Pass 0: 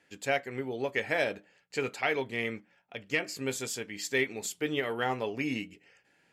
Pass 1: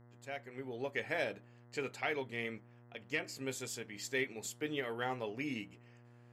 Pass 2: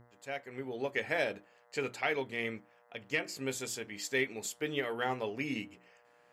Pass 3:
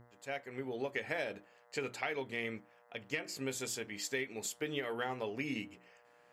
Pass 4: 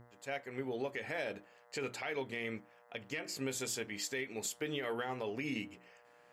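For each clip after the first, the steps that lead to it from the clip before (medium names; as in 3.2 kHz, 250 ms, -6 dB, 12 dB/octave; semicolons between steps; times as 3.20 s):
fade-in on the opening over 0.80 s; mains buzz 120 Hz, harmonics 17, -53 dBFS -7 dB/octave; trim -7 dB
hum notches 60/120/180/240/300/360 Hz; trim +4 dB
compression, threshold -33 dBFS, peak gain reduction 7.5 dB
peak limiter -29 dBFS, peak gain reduction 8.5 dB; trim +1.5 dB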